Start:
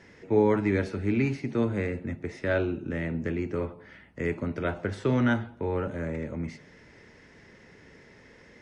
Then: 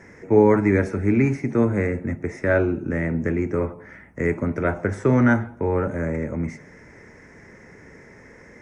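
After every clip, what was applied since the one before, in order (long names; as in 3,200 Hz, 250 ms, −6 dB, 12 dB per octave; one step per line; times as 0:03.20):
flat-topped bell 3,600 Hz −15.5 dB 1 octave
level +7 dB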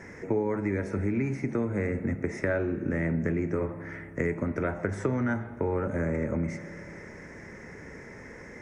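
downward compressor 6 to 1, threshold −27 dBFS, peak gain reduction 16 dB
spring reverb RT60 3.9 s, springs 30 ms, chirp 30 ms, DRR 14.5 dB
level +1.5 dB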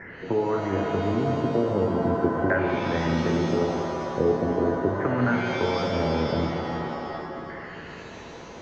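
auto-filter low-pass saw down 0.4 Hz 320–1,800 Hz
reverb with rising layers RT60 2.4 s, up +7 semitones, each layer −2 dB, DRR 3.5 dB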